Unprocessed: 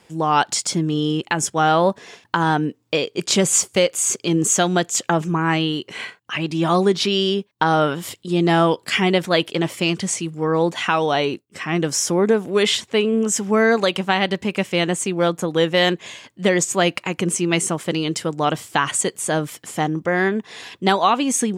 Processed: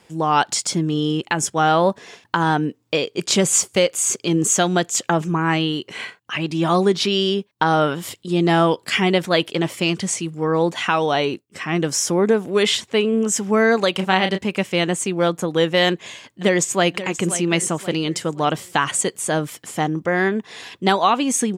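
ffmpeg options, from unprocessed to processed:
-filter_complex "[0:a]asplit=3[s0][s1][s2];[s0]afade=t=out:st=13.96:d=0.02[s3];[s1]asplit=2[s4][s5];[s5]adelay=32,volume=0.447[s6];[s4][s6]amix=inputs=2:normalize=0,afade=t=in:st=13.96:d=0.02,afade=t=out:st=14.37:d=0.02[s7];[s2]afade=t=in:st=14.37:d=0.02[s8];[s3][s7][s8]amix=inputs=3:normalize=0,asplit=2[s9][s10];[s10]afade=t=in:st=15.88:d=0.01,afade=t=out:st=16.88:d=0.01,aecho=0:1:530|1060|1590|2120:0.223872|0.100742|0.0453341|0.0204003[s11];[s9][s11]amix=inputs=2:normalize=0"

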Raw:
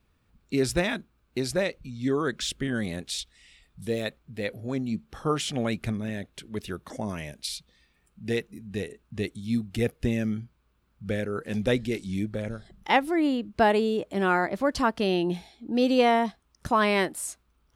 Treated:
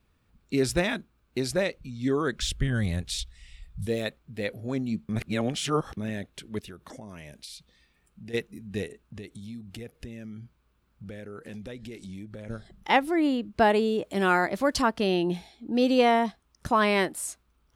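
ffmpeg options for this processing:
-filter_complex "[0:a]asplit=3[s0][s1][s2];[s0]afade=t=out:st=2.37:d=0.02[s3];[s1]asubboost=boost=11:cutoff=100,afade=t=in:st=2.37:d=0.02,afade=t=out:st=3.85:d=0.02[s4];[s2]afade=t=in:st=3.85:d=0.02[s5];[s3][s4][s5]amix=inputs=3:normalize=0,asplit=3[s6][s7][s8];[s6]afade=t=out:st=6.59:d=0.02[s9];[s7]acompressor=threshold=0.01:ratio=5:attack=3.2:release=140:knee=1:detection=peak,afade=t=in:st=6.59:d=0.02,afade=t=out:st=8.33:d=0.02[s10];[s8]afade=t=in:st=8.33:d=0.02[s11];[s9][s10][s11]amix=inputs=3:normalize=0,asplit=3[s12][s13][s14];[s12]afade=t=out:st=8.87:d=0.02[s15];[s13]acompressor=threshold=0.0126:ratio=5:attack=3.2:release=140:knee=1:detection=peak,afade=t=in:st=8.87:d=0.02,afade=t=out:st=12.48:d=0.02[s16];[s14]afade=t=in:st=12.48:d=0.02[s17];[s15][s16][s17]amix=inputs=3:normalize=0,asettb=1/sr,asplit=3[s18][s19][s20];[s18]atrim=end=14.044[s21];[s19]atrim=start=14.04:end=14.82,asetpts=PTS-STARTPTS,afade=t=in:d=0.004:c=qsin,afade=t=out:st=0.776:d=0.004:c=qsin,highshelf=f=2800:g=7[s22];[s20]atrim=start=14.816[s23];[s21][s22]acrossfade=d=0.004:c1=hsin:c2=qsin[s24];[s24][s23]acrossfade=d=0.004:c1=qsin:c2=hsin,asplit=3[s25][s26][s27];[s25]atrim=end=5.092[s28];[s26]atrim=start=5.088:end=5.972,asetpts=PTS-STARTPTS,areverse[s29];[s27]atrim=start=5.968[s30];[s28][s29]acrossfade=d=0.004:c1=hsin:c2=hsin[s31];[s31][s30]acrossfade=d=0.004:c1=hsin:c2=hsin"

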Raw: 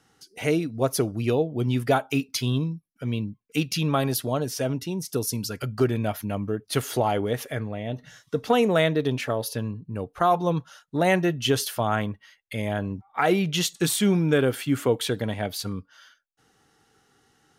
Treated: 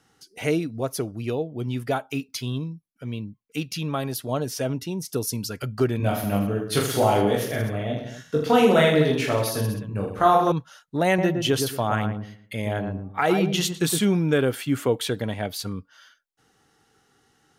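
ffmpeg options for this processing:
-filter_complex "[0:a]asettb=1/sr,asplit=3[s0][s1][s2];[s0]atrim=end=5.984[s3];[s1]atrim=start=5.98:end=10.52,asetpts=PTS-STARTPTS,afade=t=in:d=0.004:c=qsin,afade=t=out:st=4.536:d=0.004:c=qsin,aecho=1:1:20|46|79.8|123.7|180.9|255.1:0.794|0.631|0.501|0.398|0.316|0.251,atrim=end_sample=200214[s4];[s2]atrim=start=10.516[s5];[s3][s4]acrossfade=d=0.004:c1=hsin:c2=qsin[s6];[s6][s5]acrossfade=d=0.004:c1=qsin:c2=hsin,asettb=1/sr,asplit=3[s7][s8][s9];[s7]atrim=end=11.074[s10];[s8]atrim=start=11.07:end=14.05,asetpts=PTS-STARTPTS,afade=t=in:d=0.004:c=qsin,afade=t=out:st=2.976:d=0.004:c=qsin,asplit=2[s11][s12];[s12]adelay=113,lowpass=f=900:p=1,volume=0.631,asplit=2[s13][s14];[s14]adelay=113,lowpass=f=900:p=1,volume=0.31,asplit=2[s15][s16];[s16]adelay=113,lowpass=f=900:p=1,volume=0.31,asplit=2[s17][s18];[s18]adelay=113,lowpass=f=900:p=1,volume=0.31[s19];[s11][s13][s15][s17][s19]amix=inputs=5:normalize=0,atrim=end_sample=131418[s20];[s9]atrim=start=14.046[s21];[s10][s20]acrossfade=d=0.004:c1=hsin:c2=qsin[s22];[s22][s21]acrossfade=d=0.004:c1=qsin:c2=hsin,asplit=3[s23][s24][s25];[s23]atrim=end=0.812[s26];[s24]atrim=start=0.808:end=4.292,asetpts=PTS-STARTPTS,volume=0.631[s27];[s25]atrim=start=4.288[s28];[s26][s27]acrossfade=d=0.004:c1=hsin:c2=hsin[s29];[s29][s28]acrossfade=d=0.004:c1=hsin:c2=hsin"

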